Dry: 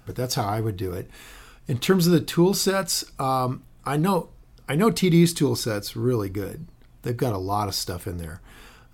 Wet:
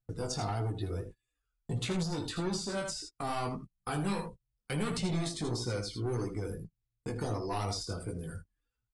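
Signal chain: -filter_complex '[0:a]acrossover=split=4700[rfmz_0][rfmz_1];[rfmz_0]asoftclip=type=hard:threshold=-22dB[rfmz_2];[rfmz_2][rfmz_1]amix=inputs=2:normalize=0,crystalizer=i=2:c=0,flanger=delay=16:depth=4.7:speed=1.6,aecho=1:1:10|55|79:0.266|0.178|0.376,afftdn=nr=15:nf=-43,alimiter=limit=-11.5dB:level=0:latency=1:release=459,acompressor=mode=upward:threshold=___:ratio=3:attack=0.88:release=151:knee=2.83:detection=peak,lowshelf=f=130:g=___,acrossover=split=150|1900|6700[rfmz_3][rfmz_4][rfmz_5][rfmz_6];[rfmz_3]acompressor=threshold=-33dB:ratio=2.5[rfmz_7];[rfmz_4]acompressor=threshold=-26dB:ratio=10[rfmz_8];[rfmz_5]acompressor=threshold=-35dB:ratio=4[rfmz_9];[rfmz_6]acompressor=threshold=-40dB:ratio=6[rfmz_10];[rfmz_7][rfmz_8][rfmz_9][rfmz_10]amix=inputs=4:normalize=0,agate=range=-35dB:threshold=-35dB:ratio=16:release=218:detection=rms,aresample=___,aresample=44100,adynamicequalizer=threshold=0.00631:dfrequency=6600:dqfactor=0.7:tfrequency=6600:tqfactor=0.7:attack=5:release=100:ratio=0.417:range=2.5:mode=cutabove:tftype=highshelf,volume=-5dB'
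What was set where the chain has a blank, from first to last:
-38dB, 5, 22050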